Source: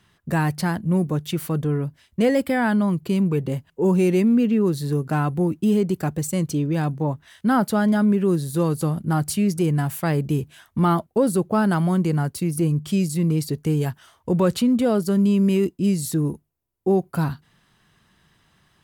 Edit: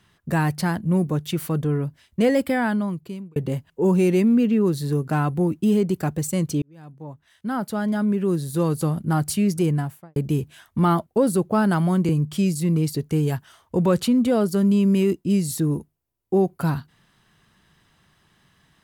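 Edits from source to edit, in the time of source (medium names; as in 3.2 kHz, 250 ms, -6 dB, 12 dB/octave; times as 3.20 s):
2.49–3.36 s: fade out linear
6.62–8.77 s: fade in
9.64–10.16 s: studio fade out
12.09–12.63 s: delete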